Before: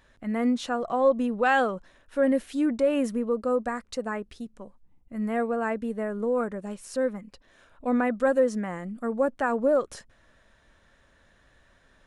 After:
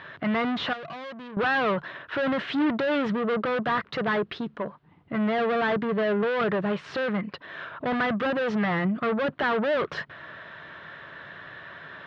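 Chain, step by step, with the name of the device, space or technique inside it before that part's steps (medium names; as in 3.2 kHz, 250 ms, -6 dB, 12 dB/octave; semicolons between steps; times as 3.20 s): overdrive pedal into a guitar cabinet (overdrive pedal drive 34 dB, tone 2 kHz, clips at -11.5 dBFS; cabinet simulation 100–3600 Hz, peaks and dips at 100 Hz +6 dB, 150 Hz +10 dB, 240 Hz -8 dB, 520 Hz -7 dB, 810 Hz -6 dB, 2.4 kHz -4 dB); 0.73–1.37 s: pre-emphasis filter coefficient 0.8; trim -2.5 dB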